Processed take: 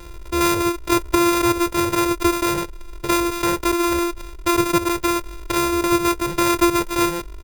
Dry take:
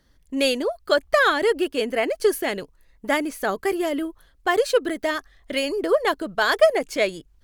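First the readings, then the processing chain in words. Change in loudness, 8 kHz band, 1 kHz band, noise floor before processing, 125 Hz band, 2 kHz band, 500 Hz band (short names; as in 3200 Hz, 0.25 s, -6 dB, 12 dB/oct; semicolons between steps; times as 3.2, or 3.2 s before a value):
+3.0 dB, +11.0 dB, +5.5 dB, -59 dBFS, n/a, -1.5 dB, -2.0 dB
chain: sample sorter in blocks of 128 samples; comb 2.1 ms, depth 77%; dynamic EQ 3700 Hz, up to -4 dB, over -33 dBFS, Q 0.85; fast leveller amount 50%; gain -2.5 dB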